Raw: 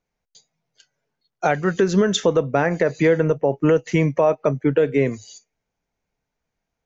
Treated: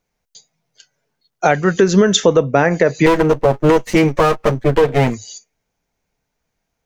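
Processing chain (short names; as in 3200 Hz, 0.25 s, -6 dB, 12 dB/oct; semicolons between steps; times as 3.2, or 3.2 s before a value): 3.06–5.14 minimum comb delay 8.8 ms; high shelf 5400 Hz +5.5 dB; gain +5.5 dB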